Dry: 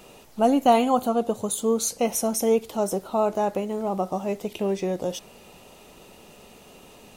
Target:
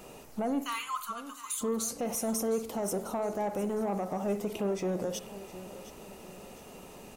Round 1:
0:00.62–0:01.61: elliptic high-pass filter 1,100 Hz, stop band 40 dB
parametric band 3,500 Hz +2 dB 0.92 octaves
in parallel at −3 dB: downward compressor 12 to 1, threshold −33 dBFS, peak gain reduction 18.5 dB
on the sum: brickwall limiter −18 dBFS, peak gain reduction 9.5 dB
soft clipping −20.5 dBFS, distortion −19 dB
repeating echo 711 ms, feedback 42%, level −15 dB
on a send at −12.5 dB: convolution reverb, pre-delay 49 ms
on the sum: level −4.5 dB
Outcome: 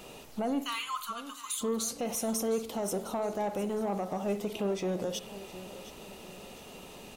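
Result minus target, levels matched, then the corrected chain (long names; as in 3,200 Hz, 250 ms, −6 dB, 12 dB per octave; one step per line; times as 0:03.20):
downward compressor: peak gain reduction +7 dB; 4,000 Hz band +4.5 dB
0:00.62–0:01.61: elliptic high-pass filter 1,100 Hz, stop band 40 dB
parametric band 3,500 Hz −6 dB 0.92 octaves
in parallel at −3 dB: downward compressor 12 to 1, threshold −25.5 dBFS, peak gain reduction 11.5 dB
on the sum: brickwall limiter −18 dBFS, peak gain reduction 10 dB
soft clipping −20.5 dBFS, distortion −18 dB
repeating echo 711 ms, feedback 42%, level −15 dB
on a send at −12.5 dB: convolution reverb, pre-delay 49 ms
on the sum: level −4.5 dB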